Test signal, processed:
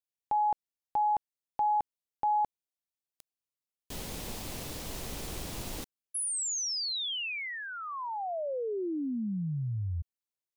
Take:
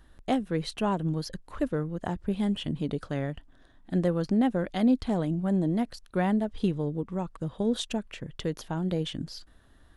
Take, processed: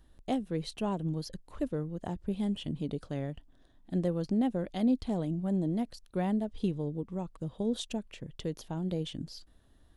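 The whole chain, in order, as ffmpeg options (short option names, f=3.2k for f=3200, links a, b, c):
-af "equalizer=f=1.5k:w=1.1:g=-7.5,volume=-4dB"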